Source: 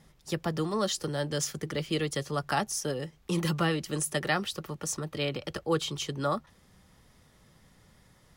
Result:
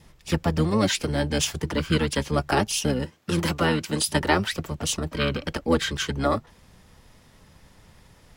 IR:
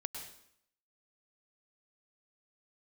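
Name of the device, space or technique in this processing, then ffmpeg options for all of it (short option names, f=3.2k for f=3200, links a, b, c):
octave pedal: -filter_complex "[0:a]adynamicequalizer=threshold=0.00316:dfrequency=1300:dqfactor=4.9:tfrequency=1300:tqfactor=4.9:attack=5:release=100:ratio=0.375:range=2:mode=cutabove:tftype=bell,asettb=1/sr,asplit=3[a][b][c];[a]atrim=end=3.054[d];[b]atrim=start=3.05:end=4.09,asetpts=PTS-STARTPTS,afade=t=in:d=0.004:c=qsin,afade=t=out:st=1.036:d=0.004:c=qsin,highpass=f=210:w=0.5412,highpass=f=210:w=1.3066[e];[c]atrim=start=4.086[f];[d][e]acrossfade=d=0.004:c1=hsin:c2=qsin[g];[g][f]acrossfade=d=0.004:c1=qsin:c2=hsin,asplit=2[h][i];[i]asetrate=22050,aresample=44100,atempo=2,volume=-1dB[j];[h][j]amix=inputs=2:normalize=0,volume=4.5dB"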